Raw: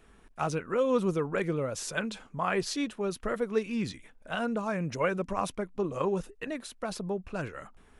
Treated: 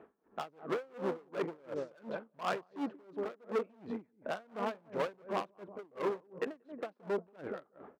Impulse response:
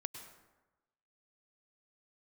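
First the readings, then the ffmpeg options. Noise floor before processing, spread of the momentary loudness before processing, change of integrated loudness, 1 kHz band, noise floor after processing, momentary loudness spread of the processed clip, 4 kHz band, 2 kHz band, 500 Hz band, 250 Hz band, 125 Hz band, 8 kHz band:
-59 dBFS, 9 LU, -8.0 dB, -6.0 dB, -73 dBFS, 8 LU, -10.5 dB, -9.5 dB, -6.5 dB, -10.0 dB, -16.0 dB, under -20 dB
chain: -filter_complex "[0:a]highshelf=f=3400:g=-10,asplit=2[s0][s1];[s1]alimiter=limit=0.0708:level=0:latency=1:release=26,volume=1.06[s2];[s0][s2]amix=inputs=2:normalize=0,acompressor=threshold=0.0158:ratio=2,asplit=2[s3][s4];[s4]adelay=182,lowpass=f=880:p=1,volume=0.501,asplit=2[s5][s6];[s6]adelay=182,lowpass=f=880:p=1,volume=0.34,asplit=2[s7][s8];[s8]adelay=182,lowpass=f=880:p=1,volume=0.34,asplit=2[s9][s10];[s10]adelay=182,lowpass=f=880:p=1,volume=0.34[s11];[s5][s7][s9][s11]amix=inputs=4:normalize=0[s12];[s3][s12]amix=inputs=2:normalize=0,adynamicsmooth=sensitivity=1.5:basefreq=1000,asoftclip=type=hard:threshold=0.0237,highpass=330,aeval=exprs='val(0)*pow(10,-30*(0.5-0.5*cos(2*PI*2.8*n/s))/20)':c=same,volume=2.24"

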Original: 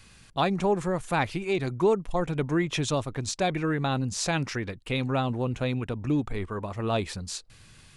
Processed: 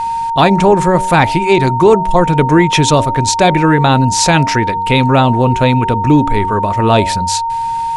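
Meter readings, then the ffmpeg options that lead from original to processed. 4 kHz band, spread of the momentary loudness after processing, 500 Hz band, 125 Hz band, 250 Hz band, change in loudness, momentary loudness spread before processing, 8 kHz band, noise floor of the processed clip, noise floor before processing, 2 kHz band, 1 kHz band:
+16.0 dB, 5 LU, +15.5 dB, +16.5 dB, +16.0 dB, +17.0 dB, 8 LU, +16.5 dB, -17 dBFS, -54 dBFS, +16.0 dB, +21.5 dB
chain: -af "aeval=exprs='val(0)+0.0282*sin(2*PI*920*n/s)':c=same,bandreject=f=94.55:t=h:w=4,bandreject=f=189.1:t=h:w=4,bandreject=f=283.65:t=h:w=4,bandreject=f=378.2:t=h:w=4,bandreject=f=472.75:t=h:w=4,bandreject=f=567.3:t=h:w=4,bandreject=f=661.85:t=h:w=4,bandreject=f=756.4:t=h:w=4,bandreject=f=850.95:t=h:w=4,bandreject=f=945.5:t=h:w=4,apsyclip=7.94,volume=0.841"

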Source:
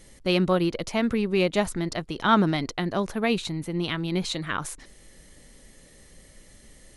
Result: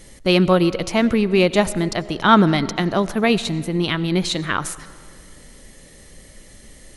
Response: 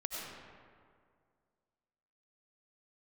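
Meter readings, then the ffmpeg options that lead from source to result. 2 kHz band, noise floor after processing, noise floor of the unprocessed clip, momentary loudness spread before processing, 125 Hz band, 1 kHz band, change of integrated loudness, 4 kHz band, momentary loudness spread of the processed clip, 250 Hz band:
+7.0 dB, -46 dBFS, -53 dBFS, 9 LU, +7.0 dB, +7.0 dB, +7.0 dB, +7.0 dB, 9 LU, +7.0 dB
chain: -filter_complex "[0:a]asplit=2[s0][s1];[1:a]atrim=start_sample=2205[s2];[s1][s2]afir=irnorm=-1:irlink=0,volume=0.158[s3];[s0][s3]amix=inputs=2:normalize=0,volume=2"

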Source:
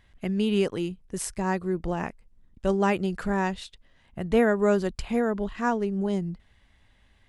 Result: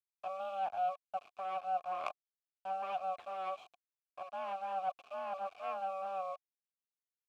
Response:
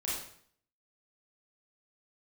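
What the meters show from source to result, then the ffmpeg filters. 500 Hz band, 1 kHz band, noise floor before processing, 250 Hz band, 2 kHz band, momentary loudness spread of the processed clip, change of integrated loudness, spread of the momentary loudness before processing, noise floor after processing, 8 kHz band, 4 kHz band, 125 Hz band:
-16.0 dB, -3.0 dB, -62 dBFS, -38.0 dB, -17.5 dB, 9 LU, -13.0 dB, 13 LU, under -85 dBFS, under -25 dB, -16.0 dB, under -35 dB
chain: -filter_complex "[0:a]areverse,acompressor=threshold=0.0251:ratio=16,areverse,highpass=f=170:t=q:w=0.5412,highpass=f=170:t=q:w=1.307,lowpass=f=3100:t=q:w=0.5176,lowpass=f=3100:t=q:w=0.7071,lowpass=f=3100:t=q:w=1.932,afreqshift=380,acrusher=bits=5:dc=4:mix=0:aa=0.000001,asplit=3[s0][s1][s2];[s0]bandpass=f=730:t=q:w=8,volume=1[s3];[s1]bandpass=f=1090:t=q:w=8,volume=0.501[s4];[s2]bandpass=f=2440:t=q:w=8,volume=0.355[s5];[s3][s4][s5]amix=inputs=3:normalize=0,volume=3.16"

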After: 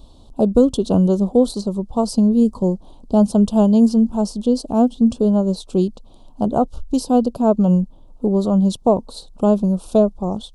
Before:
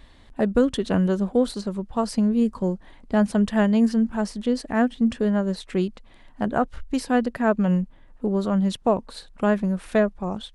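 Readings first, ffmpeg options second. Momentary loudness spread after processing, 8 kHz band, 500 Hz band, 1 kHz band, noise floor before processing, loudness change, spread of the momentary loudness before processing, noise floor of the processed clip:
7 LU, +6.0 dB, +5.5 dB, +3.5 dB, -50 dBFS, +5.5 dB, 8 LU, -44 dBFS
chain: -af "asuperstop=centerf=1900:order=4:qfactor=0.64,volume=2"

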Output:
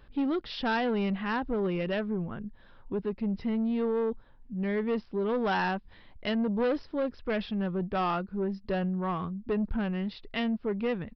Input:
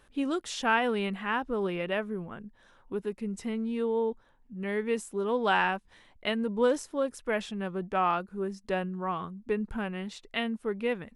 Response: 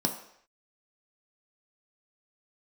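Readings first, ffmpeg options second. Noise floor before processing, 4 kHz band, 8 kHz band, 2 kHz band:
-62 dBFS, -2.0 dB, under -20 dB, -3.5 dB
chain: -af "lowshelf=f=230:g=11,aresample=11025,asoftclip=type=tanh:threshold=0.0708,aresample=44100"

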